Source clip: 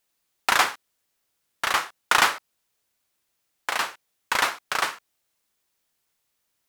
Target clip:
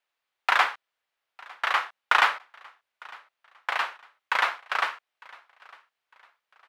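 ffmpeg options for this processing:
-filter_complex "[0:a]acrossover=split=530 3600:gain=0.141 1 0.112[s0][s1][s2];[s0][s1][s2]amix=inputs=3:normalize=0,aecho=1:1:904|1808:0.0631|0.0221"

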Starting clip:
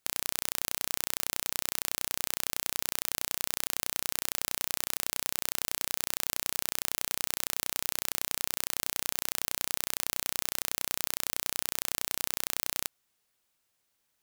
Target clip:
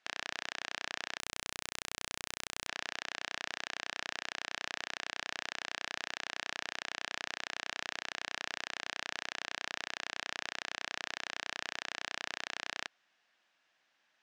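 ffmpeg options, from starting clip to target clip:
-filter_complex "[0:a]aeval=exprs='(mod(2*val(0)+1,2)-1)/2':c=same,highpass=270,equalizer=f=430:t=q:w=4:g=-8,equalizer=f=700:t=q:w=4:g=4,equalizer=f=1700:t=q:w=4:g=8,equalizer=f=2700:t=q:w=4:g=3,equalizer=f=4400:t=q:w=4:g=-4,lowpass=f=5100:w=0.5412,lowpass=f=5100:w=1.3066,asplit=3[s0][s1][s2];[s0]afade=t=out:st=1.18:d=0.02[s3];[s1]aeval=exprs='0.075*(cos(1*acos(clip(val(0)/0.075,-1,1)))-cos(1*PI/2))+0.0237*(cos(3*acos(clip(val(0)/0.075,-1,1)))-cos(3*PI/2))+0.00106*(cos(7*acos(clip(val(0)/0.075,-1,1)))-cos(7*PI/2))':c=same,afade=t=in:st=1.18:d=0.02,afade=t=out:st=2.67:d=0.02[s4];[s2]afade=t=in:st=2.67:d=0.02[s5];[s3][s4][s5]amix=inputs=3:normalize=0,volume=1.88"

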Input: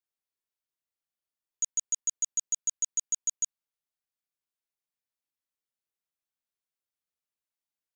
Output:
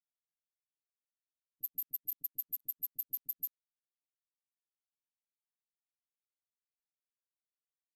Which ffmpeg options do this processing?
-filter_complex "[0:a]equalizer=f=125:t=o:w=1:g=12,equalizer=f=250:t=o:w=1:g=-6,equalizer=f=500:t=o:w=1:g=-6,equalizer=f=1000:t=o:w=1:g=-8,equalizer=f=8000:t=o:w=1:g=11,agate=range=0.00501:threshold=0.126:ratio=16:detection=peak,acrossover=split=5100[s0][s1];[s1]acompressor=threshold=0.0224:ratio=4:attack=1:release=60[s2];[s0][s2]amix=inputs=2:normalize=0,asetrate=80880,aresample=44100,atempo=0.545254,highshelf=f=5400:g=-7,asoftclip=type=tanh:threshold=0.0299,aecho=1:1:6.9:0.99,acrossover=split=410[s3][s4];[s4]adelay=40[s5];[s3][s5]amix=inputs=2:normalize=0"

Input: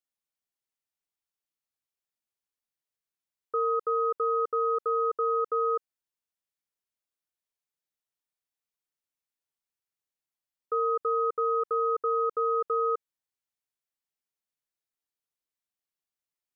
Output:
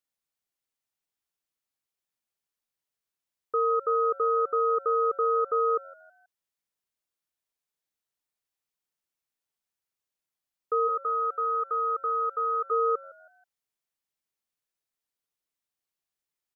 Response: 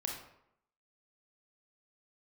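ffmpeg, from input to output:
-filter_complex "[0:a]asplit=3[s0][s1][s2];[s0]afade=t=out:st=10.87:d=0.02[s3];[s1]highpass=740,afade=t=in:st=10.87:d=0.02,afade=t=out:st=12.7:d=0.02[s4];[s2]afade=t=in:st=12.7:d=0.02[s5];[s3][s4][s5]amix=inputs=3:normalize=0,asplit=4[s6][s7][s8][s9];[s7]adelay=161,afreqshift=89,volume=0.0794[s10];[s8]adelay=322,afreqshift=178,volume=0.0309[s11];[s9]adelay=483,afreqshift=267,volume=0.012[s12];[s6][s10][s11][s12]amix=inputs=4:normalize=0,volume=1.26"

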